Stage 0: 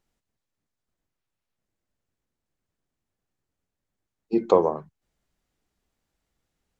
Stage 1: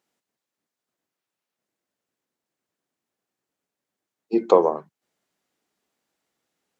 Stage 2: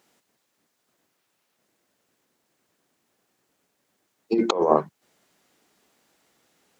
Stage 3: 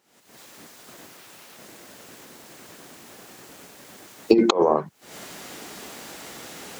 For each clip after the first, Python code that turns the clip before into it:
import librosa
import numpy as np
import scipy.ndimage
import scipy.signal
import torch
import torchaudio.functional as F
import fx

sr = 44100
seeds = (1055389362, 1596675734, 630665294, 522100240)

y1 = scipy.signal.sosfilt(scipy.signal.butter(2, 250.0, 'highpass', fs=sr, output='sos'), x)
y1 = F.gain(torch.from_numpy(y1), 3.0).numpy()
y2 = fx.over_compress(y1, sr, threshold_db=-26.0, ratio=-1.0)
y2 = F.gain(torch.from_numpy(y2), 5.5).numpy()
y3 = fx.recorder_agc(y2, sr, target_db=-6.0, rise_db_per_s=76.0, max_gain_db=30)
y3 = F.gain(torch.from_numpy(y3), -3.5).numpy()